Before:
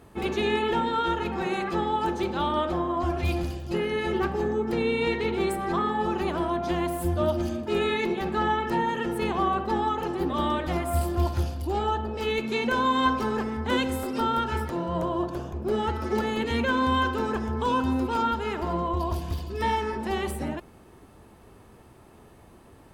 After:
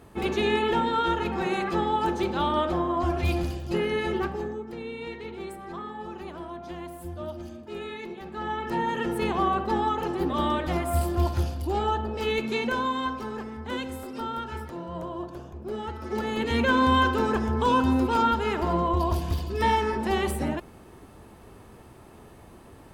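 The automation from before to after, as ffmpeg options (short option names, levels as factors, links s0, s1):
-af "volume=13.3,afade=t=out:st=3.93:d=0.74:silence=0.251189,afade=t=in:st=8.31:d=0.7:silence=0.266073,afade=t=out:st=12.45:d=0.62:silence=0.421697,afade=t=in:st=16:d=0.72:silence=0.316228"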